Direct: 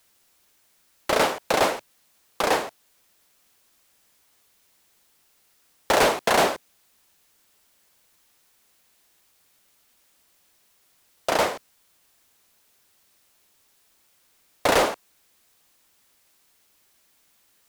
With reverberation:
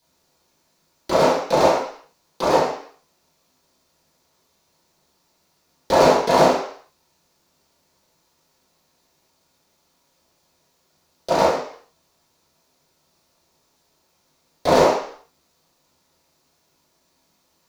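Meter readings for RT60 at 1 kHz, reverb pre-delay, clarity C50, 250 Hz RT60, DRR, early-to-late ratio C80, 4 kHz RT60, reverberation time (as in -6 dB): 0.55 s, 18 ms, 3.5 dB, 0.50 s, -11.0 dB, 7.0 dB, 0.60 s, 0.55 s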